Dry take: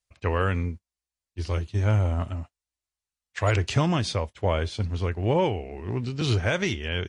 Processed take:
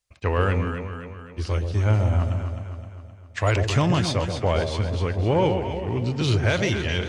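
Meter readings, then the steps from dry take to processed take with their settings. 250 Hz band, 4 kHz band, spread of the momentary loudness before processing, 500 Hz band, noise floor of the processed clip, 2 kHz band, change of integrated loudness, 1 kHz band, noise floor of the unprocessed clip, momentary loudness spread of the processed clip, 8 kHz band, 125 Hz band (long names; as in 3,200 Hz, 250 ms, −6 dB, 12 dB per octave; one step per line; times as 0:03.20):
+3.0 dB, +2.5 dB, 11 LU, +3.0 dB, −45 dBFS, +2.5 dB, +2.5 dB, +2.5 dB, below −85 dBFS, 14 LU, +3.0 dB, +3.5 dB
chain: delay that swaps between a low-pass and a high-pass 130 ms, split 810 Hz, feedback 71%, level −6 dB
in parallel at −7 dB: soft clipping −24 dBFS, distortion −9 dB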